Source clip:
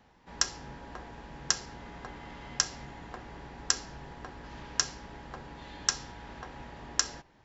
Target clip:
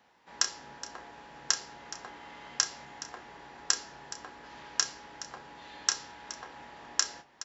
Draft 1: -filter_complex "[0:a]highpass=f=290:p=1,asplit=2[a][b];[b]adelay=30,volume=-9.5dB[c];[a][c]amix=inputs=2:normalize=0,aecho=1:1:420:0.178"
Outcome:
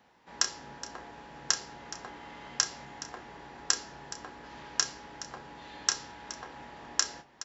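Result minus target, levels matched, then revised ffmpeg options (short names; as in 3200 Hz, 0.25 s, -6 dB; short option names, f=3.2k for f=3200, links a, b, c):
250 Hz band +4.0 dB
-filter_complex "[0:a]highpass=f=580:p=1,asplit=2[a][b];[b]adelay=30,volume=-9.5dB[c];[a][c]amix=inputs=2:normalize=0,aecho=1:1:420:0.178"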